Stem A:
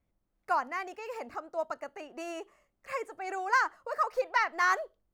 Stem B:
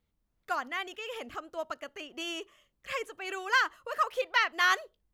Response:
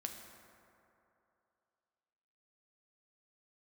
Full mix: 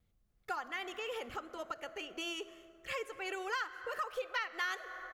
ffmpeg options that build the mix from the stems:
-filter_complex "[0:a]lowshelf=f=190:t=q:w=1.5:g=7.5,volume=0.501[s0];[1:a]adelay=2.1,volume=0.631,asplit=2[s1][s2];[s2]volume=0.668[s3];[2:a]atrim=start_sample=2205[s4];[s3][s4]afir=irnorm=-1:irlink=0[s5];[s0][s1][s5]amix=inputs=3:normalize=0,bandreject=f=950:w=9.3,acompressor=threshold=0.0141:ratio=3"

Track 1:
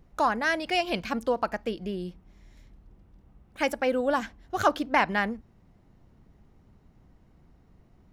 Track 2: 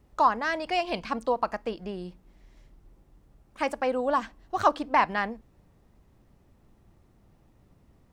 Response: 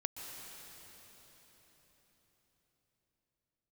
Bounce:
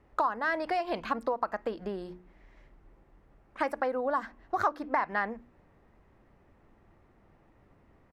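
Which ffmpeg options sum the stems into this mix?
-filter_complex "[0:a]acompressor=threshold=0.0251:ratio=6,volume=0.178[s0];[1:a]lowpass=f=1300:p=1,bandreject=f=60:t=h:w=6,bandreject=f=120:t=h:w=6,bandreject=f=180:t=h:w=6,bandreject=f=240:t=h:w=6,bandreject=f=300:t=h:w=6,bandreject=f=360:t=h:w=6,acompressor=threshold=0.0251:ratio=6,volume=0.708,asplit=2[s1][s2];[s2]apad=whole_len=358149[s3];[s0][s3]sidechaingate=range=0.0224:threshold=0.00282:ratio=16:detection=peak[s4];[s4][s1]amix=inputs=2:normalize=0,firequalizer=gain_entry='entry(160,0);entry(320,5);entry(1900,14);entry(3500,7)':delay=0.05:min_phase=1"

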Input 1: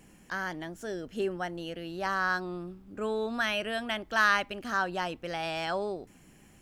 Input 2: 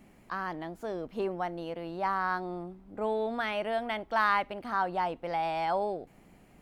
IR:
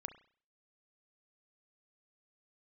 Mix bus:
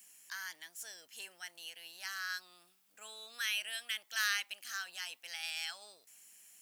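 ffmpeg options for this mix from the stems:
-filter_complex "[0:a]tiltshelf=f=740:g=-7,volume=0.891[s0];[1:a]highpass=44,tiltshelf=f=970:g=4.5,volume=-1,volume=0.668[s1];[s0][s1]amix=inputs=2:normalize=0,aderivative"

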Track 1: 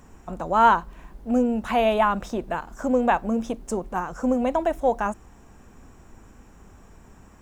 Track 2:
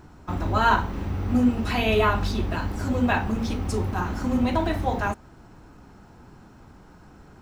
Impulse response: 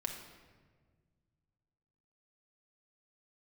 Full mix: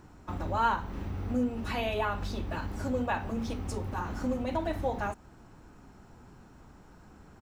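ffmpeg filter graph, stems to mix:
-filter_complex "[0:a]volume=0.251[s0];[1:a]acompressor=threshold=0.0447:ratio=2.5,volume=-1,adelay=0.3,volume=0.531[s1];[s0][s1]amix=inputs=2:normalize=0"

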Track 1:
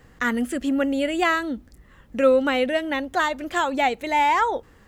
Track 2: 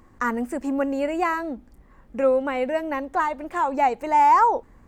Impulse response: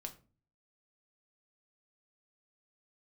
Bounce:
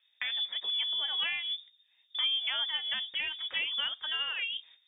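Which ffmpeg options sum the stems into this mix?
-filter_complex "[0:a]acompressor=threshold=0.0631:ratio=6,volume=0.794[s0];[1:a]flanger=delay=8.1:depth=7.4:regen=43:speed=1.5:shape=triangular,volume=0.266,asplit=2[s1][s2];[s2]apad=whole_len=215197[s3];[s0][s3]sidechaingate=range=0.141:threshold=0.00112:ratio=16:detection=peak[s4];[s4][s1]amix=inputs=2:normalize=0,flanger=delay=0.5:depth=2.4:regen=-84:speed=0.41:shape=sinusoidal,lowpass=f=3100:t=q:w=0.5098,lowpass=f=3100:t=q:w=0.6013,lowpass=f=3100:t=q:w=0.9,lowpass=f=3100:t=q:w=2.563,afreqshift=-3700"

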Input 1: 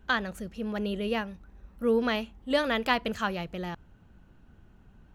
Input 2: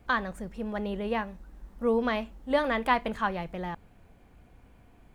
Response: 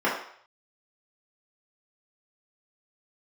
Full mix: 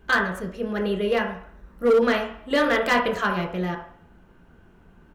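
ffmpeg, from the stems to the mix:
-filter_complex "[0:a]bandreject=f=780:w=12,volume=1.12,asplit=2[s0][s1];[s1]volume=0.251[s2];[1:a]adelay=0.6,volume=0.447[s3];[2:a]atrim=start_sample=2205[s4];[s2][s4]afir=irnorm=-1:irlink=0[s5];[s0][s3][s5]amix=inputs=3:normalize=0,volume=4.73,asoftclip=hard,volume=0.211"

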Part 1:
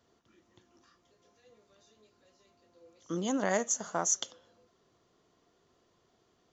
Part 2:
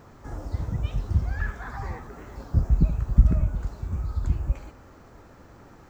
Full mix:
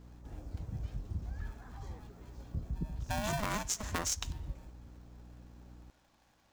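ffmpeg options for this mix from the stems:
-filter_complex "[0:a]aeval=exprs='val(0)*sgn(sin(2*PI*420*n/s))':c=same,volume=1.12[s0];[1:a]equalizer=f=1900:w=0.49:g=-10,acrossover=split=160[s1][s2];[s1]acompressor=threshold=0.0708:ratio=6[s3];[s3][s2]amix=inputs=2:normalize=0,aeval=exprs='val(0)+0.00891*(sin(2*PI*60*n/s)+sin(2*PI*2*60*n/s)/2+sin(2*PI*3*60*n/s)/3+sin(2*PI*4*60*n/s)/4+sin(2*PI*5*60*n/s)/5)':c=same,volume=0.282,asplit=2[s4][s5];[s5]volume=0.0708,aecho=0:1:570:1[s6];[s0][s4][s6]amix=inputs=3:normalize=0,acompressor=threshold=0.0282:ratio=5"

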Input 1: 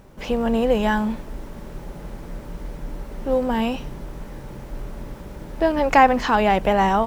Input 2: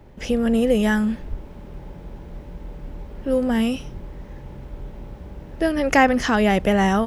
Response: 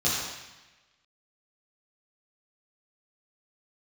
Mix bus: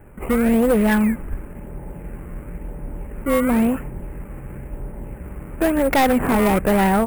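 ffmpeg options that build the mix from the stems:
-filter_complex "[0:a]volume=0.355[s0];[1:a]acrusher=samples=18:mix=1:aa=0.000001:lfo=1:lforange=18:lforate=0.97,volume=1.26[s1];[s0][s1]amix=inputs=2:normalize=0,asuperstop=centerf=4700:order=8:qfactor=0.79,asoftclip=type=hard:threshold=0.237"

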